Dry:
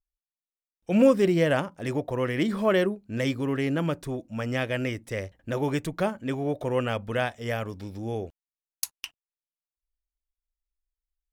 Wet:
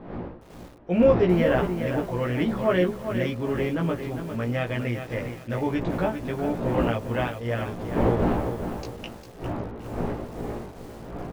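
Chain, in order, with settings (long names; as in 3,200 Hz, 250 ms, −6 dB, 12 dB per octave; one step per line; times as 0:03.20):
wind on the microphone 460 Hz −33 dBFS
Gaussian smoothing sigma 2.1 samples
double-tracking delay 17 ms −2 dB
on a send: repeating echo 763 ms, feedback 59%, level −22.5 dB
on the sum: feedback echo at a low word length 402 ms, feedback 35%, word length 7 bits, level −8 dB
level −1.5 dB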